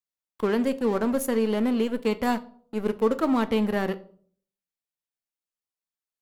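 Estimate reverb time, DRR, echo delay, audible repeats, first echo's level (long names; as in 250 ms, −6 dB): 0.50 s, 11.5 dB, no echo audible, no echo audible, no echo audible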